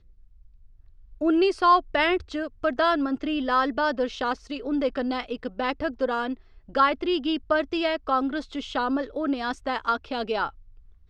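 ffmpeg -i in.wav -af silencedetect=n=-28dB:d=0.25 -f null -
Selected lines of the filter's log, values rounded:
silence_start: 0.00
silence_end: 1.22 | silence_duration: 1.22
silence_start: 6.33
silence_end: 6.75 | silence_duration: 0.42
silence_start: 10.48
silence_end: 11.09 | silence_duration: 0.62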